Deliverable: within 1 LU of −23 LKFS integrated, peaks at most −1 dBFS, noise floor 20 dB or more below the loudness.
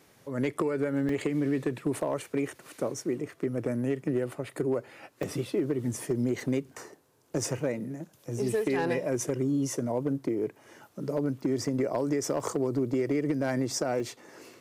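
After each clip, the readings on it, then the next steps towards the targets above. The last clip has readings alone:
share of clipped samples 0.5%; peaks flattened at −20.0 dBFS; number of dropouts 6; longest dropout 2.2 ms; integrated loudness −30.5 LKFS; sample peak −20.0 dBFS; target loudness −23.0 LKFS
→ clipped peaks rebuilt −20 dBFS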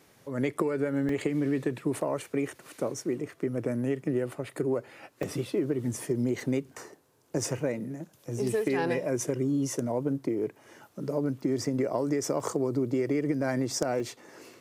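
share of clipped samples 0.0%; number of dropouts 6; longest dropout 2.2 ms
→ repair the gap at 0:01.09/0:05.23/0:06.40/0:11.65/0:12.40/0:14.00, 2.2 ms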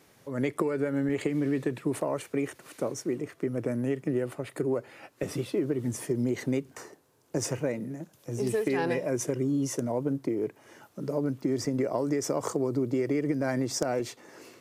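number of dropouts 0; integrated loudness −30.5 LKFS; sample peak −11.0 dBFS; target loudness −23.0 LKFS
→ level +7.5 dB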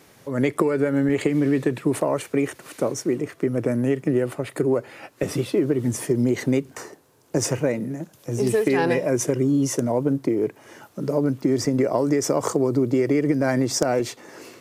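integrated loudness −23.0 LKFS; sample peak −3.5 dBFS; background noise floor −54 dBFS

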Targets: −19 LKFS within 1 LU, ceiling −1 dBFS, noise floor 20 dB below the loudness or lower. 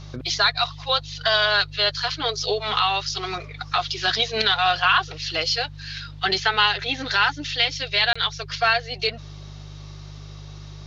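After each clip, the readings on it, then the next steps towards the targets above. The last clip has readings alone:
number of dropouts 1; longest dropout 25 ms; mains hum 50 Hz; hum harmonics up to 150 Hz; level of the hum −37 dBFS; integrated loudness −21.5 LKFS; sample peak −6.5 dBFS; target loudness −19.0 LKFS
→ repair the gap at 0:08.13, 25 ms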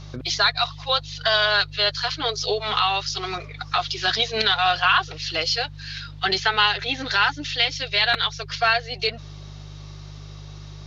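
number of dropouts 0; mains hum 50 Hz; hum harmonics up to 150 Hz; level of the hum −37 dBFS
→ hum removal 50 Hz, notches 3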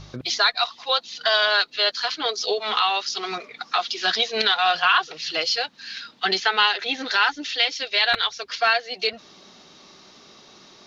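mains hum none found; integrated loudness −21.5 LKFS; sample peak −6.5 dBFS; target loudness −19.0 LKFS
→ level +2.5 dB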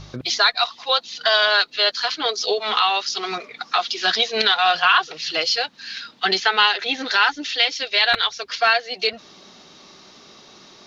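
integrated loudness −19.0 LKFS; sample peak −4.0 dBFS; background noise floor −48 dBFS

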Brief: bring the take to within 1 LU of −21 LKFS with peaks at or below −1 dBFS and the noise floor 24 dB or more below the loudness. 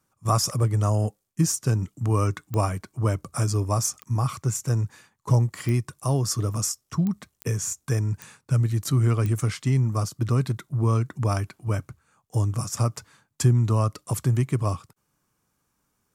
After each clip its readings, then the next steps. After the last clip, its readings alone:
number of clicks 7; integrated loudness −25.5 LKFS; sample peak −8.0 dBFS; target loudness −21.0 LKFS
→ click removal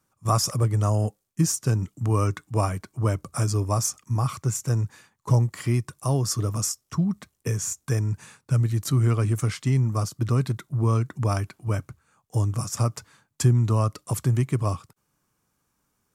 number of clicks 0; integrated loudness −25.5 LKFS; sample peak −8.0 dBFS; target loudness −21.0 LKFS
→ level +4.5 dB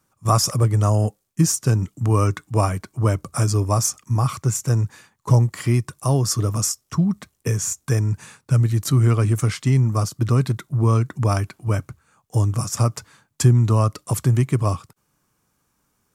integrated loudness −21.0 LKFS; sample peak −3.5 dBFS; background noise floor −70 dBFS

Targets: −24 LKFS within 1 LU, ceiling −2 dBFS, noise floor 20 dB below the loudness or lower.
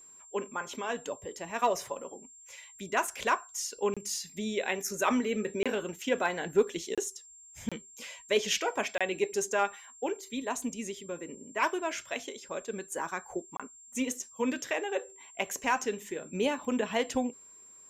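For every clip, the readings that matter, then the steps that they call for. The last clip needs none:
number of dropouts 6; longest dropout 26 ms; interfering tone 7,400 Hz; level of the tone −51 dBFS; integrated loudness −33.0 LKFS; sample peak −15.0 dBFS; target loudness −24.0 LKFS
→ repair the gap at 0:03.94/0:05.63/0:06.95/0:07.69/0:08.98/0:13.57, 26 ms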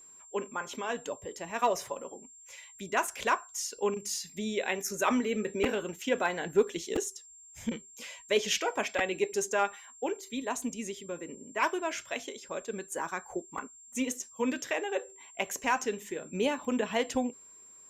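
number of dropouts 0; interfering tone 7,400 Hz; level of the tone −51 dBFS
→ notch filter 7,400 Hz, Q 30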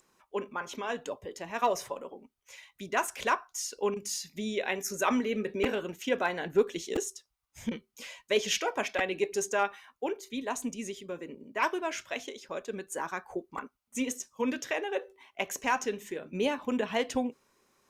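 interfering tone none found; integrated loudness −33.0 LKFS; sample peak −14.0 dBFS; target loudness −24.0 LKFS
→ level +9 dB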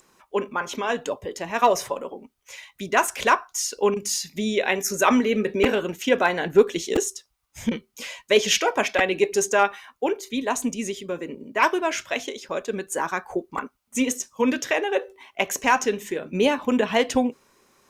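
integrated loudness −24.0 LKFS; sample peak −5.0 dBFS; background noise floor −71 dBFS

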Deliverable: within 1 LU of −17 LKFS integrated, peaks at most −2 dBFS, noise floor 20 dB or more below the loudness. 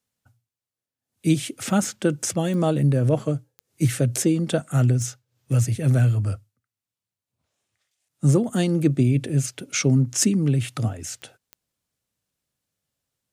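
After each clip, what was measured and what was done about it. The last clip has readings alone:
number of clicks 5; integrated loudness −22.5 LKFS; sample peak −6.0 dBFS; target loudness −17.0 LKFS
→ click removal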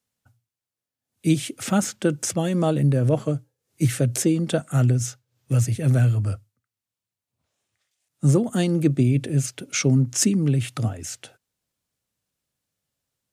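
number of clicks 0; integrated loudness −22.5 LKFS; sample peak −6.0 dBFS; target loudness −17.0 LKFS
→ level +5.5 dB
brickwall limiter −2 dBFS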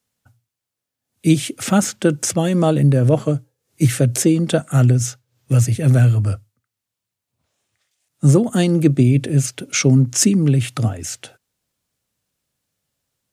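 integrated loudness −17.0 LKFS; sample peak −2.0 dBFS; background noise floor −83 dBFS

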